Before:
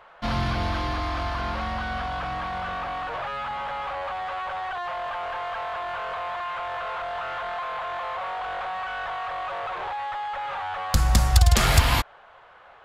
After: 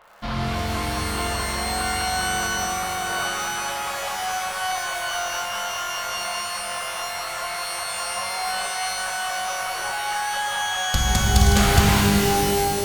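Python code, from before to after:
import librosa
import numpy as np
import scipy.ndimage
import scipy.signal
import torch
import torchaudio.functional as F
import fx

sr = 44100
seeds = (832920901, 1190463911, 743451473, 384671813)

y = fx.dmg_crackle(x, sr, seeds[0], per_s=150.0, level_db=-41.0)
y = fx.rev_shimmer(y, sr, seeds[1], rt60_s=3.0, semitones=12, shimmer_db=-2, drr_db=0.5)
y = y * 10.0 ** (-2.0 / 20.0)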